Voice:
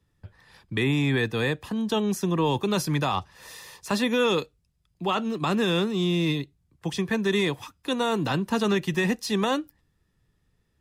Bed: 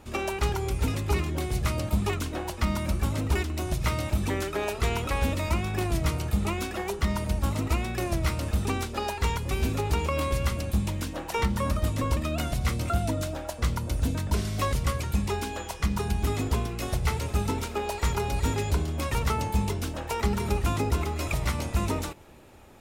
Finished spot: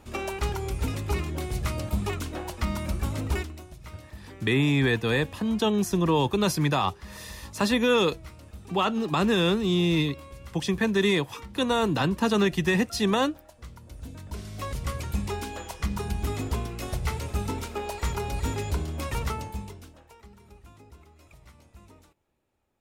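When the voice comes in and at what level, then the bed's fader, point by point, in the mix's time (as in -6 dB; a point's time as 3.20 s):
3.70 s, +1.0 dB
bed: 3.38 s -2 dB
3.70 s -17.5 dB
13.76 s -17.5 dB
15.04 s -2.5 dB
19.24 s -2.5 dB
20.26 s -25 dB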